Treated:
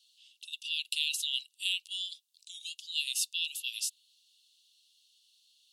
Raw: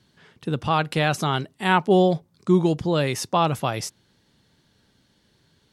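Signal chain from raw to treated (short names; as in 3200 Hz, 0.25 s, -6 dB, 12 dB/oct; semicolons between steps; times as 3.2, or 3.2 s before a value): rippled Chebyshev high-pass 2700 Hz, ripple 3 dB; dynamic EQ 5800 Hz, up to -5 dB, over -52 dBFS, Q 3.4; gain +3 dB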